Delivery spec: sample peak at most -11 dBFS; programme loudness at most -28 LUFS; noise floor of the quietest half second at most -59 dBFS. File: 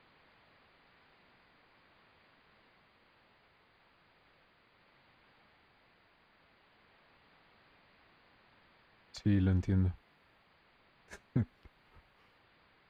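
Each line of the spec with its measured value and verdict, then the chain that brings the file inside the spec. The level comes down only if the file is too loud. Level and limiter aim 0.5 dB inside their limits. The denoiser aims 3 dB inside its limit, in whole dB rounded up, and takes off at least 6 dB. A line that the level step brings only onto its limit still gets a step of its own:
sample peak -19.0 dBFS: OK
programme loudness -33.5 LUFS: OK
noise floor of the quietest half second -68 dBFS: OK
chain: none

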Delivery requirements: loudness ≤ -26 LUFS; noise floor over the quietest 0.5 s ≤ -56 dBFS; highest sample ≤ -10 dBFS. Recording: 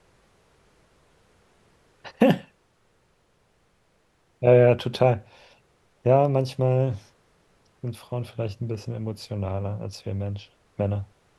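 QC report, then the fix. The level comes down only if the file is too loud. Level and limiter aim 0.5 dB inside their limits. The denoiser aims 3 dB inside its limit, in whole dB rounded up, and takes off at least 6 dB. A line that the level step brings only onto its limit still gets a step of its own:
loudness -24.5 LUFS: fail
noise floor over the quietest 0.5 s -65 dBFS: OK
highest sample -3.5 dBFS: fail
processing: gain -2 dB; limiter -10.5 dBFS

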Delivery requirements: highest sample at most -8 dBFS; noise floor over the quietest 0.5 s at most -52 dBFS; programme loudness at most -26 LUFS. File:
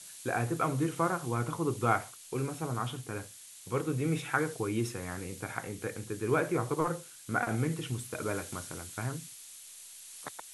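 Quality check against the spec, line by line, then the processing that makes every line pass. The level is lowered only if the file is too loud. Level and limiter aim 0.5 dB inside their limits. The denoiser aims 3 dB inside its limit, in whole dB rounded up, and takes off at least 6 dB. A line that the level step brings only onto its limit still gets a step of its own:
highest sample -11.5 dBFS: OK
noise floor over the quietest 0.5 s -50 dBFS: fail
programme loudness -33.5 LUFS: OK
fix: denoiser 6 dB, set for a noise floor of -50 dBFS

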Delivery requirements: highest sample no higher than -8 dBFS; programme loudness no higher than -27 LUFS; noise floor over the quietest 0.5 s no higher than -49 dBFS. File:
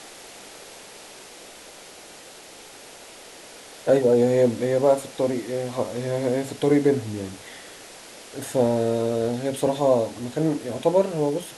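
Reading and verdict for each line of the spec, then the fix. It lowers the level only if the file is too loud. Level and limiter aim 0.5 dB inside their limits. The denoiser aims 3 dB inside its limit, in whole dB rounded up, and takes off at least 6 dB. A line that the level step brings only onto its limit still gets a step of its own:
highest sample -7.5 dBFS: fail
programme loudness -23.0 LUFS: fail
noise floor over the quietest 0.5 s -44 dBFS: fail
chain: denoiser 6 dB, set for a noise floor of -44 dBFS; gain -4.5 dB

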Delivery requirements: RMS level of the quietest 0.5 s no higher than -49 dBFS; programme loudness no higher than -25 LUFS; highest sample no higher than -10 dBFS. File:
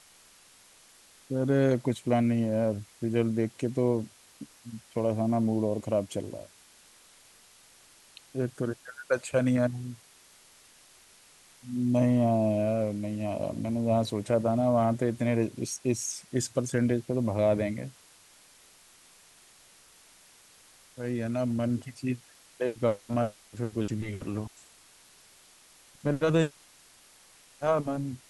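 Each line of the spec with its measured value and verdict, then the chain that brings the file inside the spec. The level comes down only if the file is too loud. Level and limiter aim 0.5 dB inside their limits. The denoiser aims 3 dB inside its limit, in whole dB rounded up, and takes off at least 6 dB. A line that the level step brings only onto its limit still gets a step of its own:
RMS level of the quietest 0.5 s -57 dBFS: OK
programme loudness -29.0 LUFS: OK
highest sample -12.5 dBFS: OK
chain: none

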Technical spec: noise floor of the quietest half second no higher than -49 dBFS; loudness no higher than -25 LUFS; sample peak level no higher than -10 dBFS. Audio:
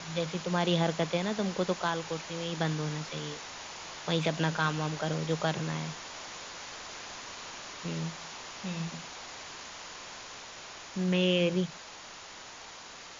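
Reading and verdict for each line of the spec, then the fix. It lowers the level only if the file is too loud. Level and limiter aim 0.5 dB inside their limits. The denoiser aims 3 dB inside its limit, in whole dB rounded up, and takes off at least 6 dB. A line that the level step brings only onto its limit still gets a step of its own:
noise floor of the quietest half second -47 dBFS: fail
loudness -33.0 LUFS: OK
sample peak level -15.0 dBFS: OK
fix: denoiser 6 dB, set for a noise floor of -47 dBFS

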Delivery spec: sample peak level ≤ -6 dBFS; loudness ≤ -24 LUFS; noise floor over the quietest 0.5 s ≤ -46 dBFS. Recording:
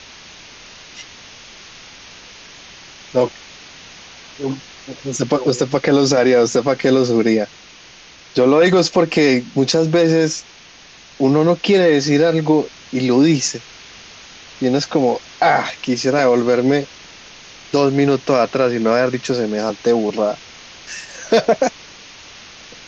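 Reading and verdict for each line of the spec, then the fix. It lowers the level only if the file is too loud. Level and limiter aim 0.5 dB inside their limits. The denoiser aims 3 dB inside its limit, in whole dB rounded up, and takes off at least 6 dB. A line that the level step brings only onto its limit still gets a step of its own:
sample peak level -4.5 dBFS: fail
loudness -16.5 LUFS: fail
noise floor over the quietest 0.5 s -43 dBFS: fail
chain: gain -8 dB

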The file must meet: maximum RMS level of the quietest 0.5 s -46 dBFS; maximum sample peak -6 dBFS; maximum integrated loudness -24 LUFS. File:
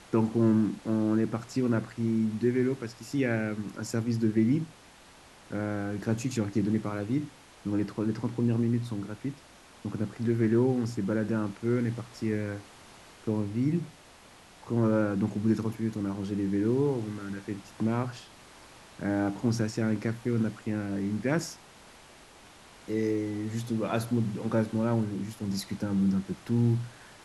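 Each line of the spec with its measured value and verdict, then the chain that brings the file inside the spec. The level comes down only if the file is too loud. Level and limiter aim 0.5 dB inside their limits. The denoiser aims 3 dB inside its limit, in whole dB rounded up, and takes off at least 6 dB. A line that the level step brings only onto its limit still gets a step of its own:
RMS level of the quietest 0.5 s -54 dBFS: OK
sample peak -13.5 dBFS: OK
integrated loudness -30.0 LUFS: OK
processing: none

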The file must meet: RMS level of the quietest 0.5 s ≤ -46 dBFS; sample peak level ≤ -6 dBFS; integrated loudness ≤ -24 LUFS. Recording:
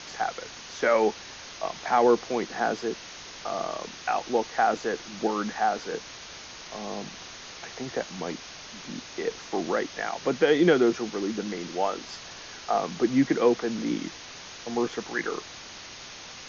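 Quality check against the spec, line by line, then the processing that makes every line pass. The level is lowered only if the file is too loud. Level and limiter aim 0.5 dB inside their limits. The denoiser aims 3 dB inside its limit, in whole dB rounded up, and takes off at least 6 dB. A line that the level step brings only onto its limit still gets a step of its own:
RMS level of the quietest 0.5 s -43 dBFS: fail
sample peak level -9.0 dBFS: OK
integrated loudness -27.5 LUFS: OK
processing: denoiser 6 dB, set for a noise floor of -43 dBFS

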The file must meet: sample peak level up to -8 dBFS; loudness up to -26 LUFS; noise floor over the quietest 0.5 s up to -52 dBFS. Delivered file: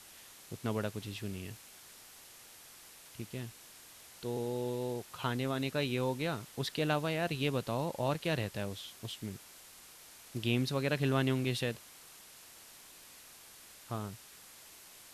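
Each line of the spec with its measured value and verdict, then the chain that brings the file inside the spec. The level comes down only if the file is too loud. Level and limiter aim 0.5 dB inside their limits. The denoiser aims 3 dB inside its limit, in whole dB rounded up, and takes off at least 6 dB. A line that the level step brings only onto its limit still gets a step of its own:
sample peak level -16.0 dBFS: OK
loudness -35.5 LUFS: OK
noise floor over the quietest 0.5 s -55 dBFS: OK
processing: none

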